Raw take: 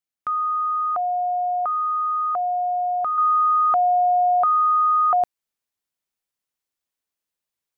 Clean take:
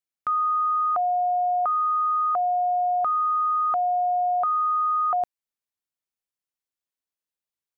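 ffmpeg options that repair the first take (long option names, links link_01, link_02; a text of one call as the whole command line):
ffmpeg -i in.wav -af "asetnsamples=nb_out_samples=441:pad=0,asendcmd='3.18 volume volume -5dB',volume=0dB" out.wav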